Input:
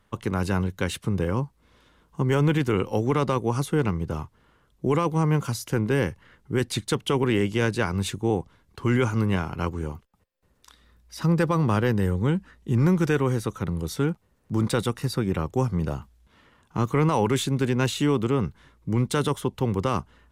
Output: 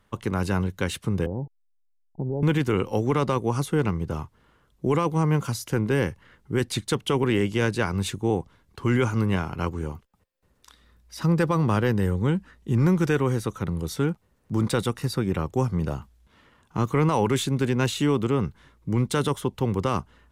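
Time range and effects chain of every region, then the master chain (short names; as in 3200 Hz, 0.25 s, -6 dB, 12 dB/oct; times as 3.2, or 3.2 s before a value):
1.26–2.43 level-crossing sampler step -43.5 dBFS + steep low-pass 880 Hz 96 dB/oct + compressor 2:1, threshold -28 dBFS
whole clip: dry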